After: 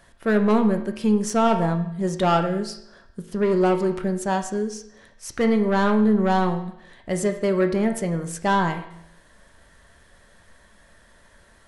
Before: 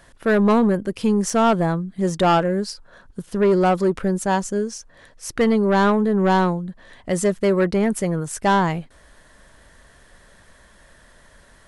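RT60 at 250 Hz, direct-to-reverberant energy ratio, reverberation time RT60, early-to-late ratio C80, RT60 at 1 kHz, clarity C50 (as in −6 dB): 0.75 s, 6.0 dB, 0.75 s, 12.0 dB, 0.75 s, 10.0 dB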